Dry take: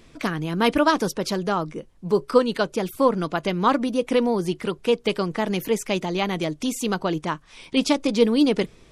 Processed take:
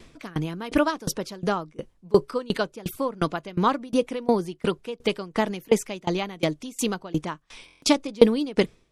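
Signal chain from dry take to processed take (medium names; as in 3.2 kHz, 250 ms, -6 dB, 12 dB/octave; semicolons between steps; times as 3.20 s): buffer glitch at 7.66 s, samples 1024, times 6; sawtooth tremolo in dB decaying 2.8 Hz, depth 25 dB; trim +5 dB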